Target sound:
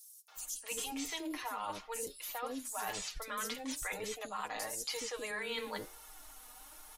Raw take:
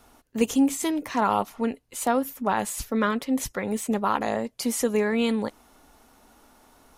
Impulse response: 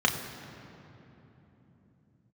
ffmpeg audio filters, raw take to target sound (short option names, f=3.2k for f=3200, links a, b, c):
-filter_complex "[0:a]equalizer=f=230:t=o:w=2:g=-12.5,asplit=2[a][b];[b]alimiter=limit=-23.5dB:level=0:latency=1,volume=2.5dB[c];[a][c]amix=inputs=2:normalize=0,acrossover=split=460|5300[d][e][f];[e]adelay=280[g];[d]adelay=360[h];[h][g][f]amix=inputs=3:normalize=0,flanger=delay=2.2:depth=1.9:regen=50:speed=1:shape=sinusoidal,aecho=1:1:6.5:0.61,flanger=delay=4.5:depth=9.4:regen=85:speed=0.45:shape=triangular,areverse,acompressor=threshold=-38dB:ratio=6,areverse,highshelf=f=3.8k:g=11,acrossover=split=5100[i][j];[j]acompressor=threshold=-41dB:ratio=4:attack=1:release=60[k];[i][k]amix=inputs=2:normalize=0"